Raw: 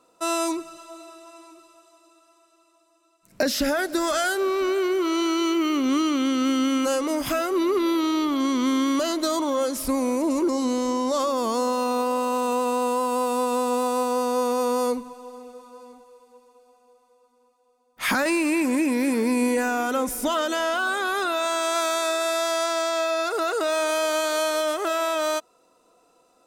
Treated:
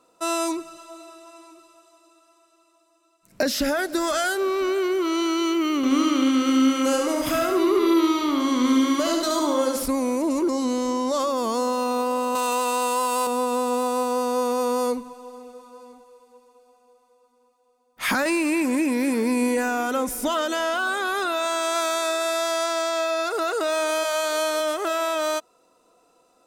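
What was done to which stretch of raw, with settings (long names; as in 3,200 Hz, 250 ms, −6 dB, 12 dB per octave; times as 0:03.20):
0:05.76–0:09.86: repeating echo 72 ms, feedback 52%, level −4 dB
0:12.35–0:13.27: tilt shelving filter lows −7.5 dB, about 700 Hz
0:24.03–0:24.59: high-pass filter 610 Hz → 150 Hz 24 dB per octave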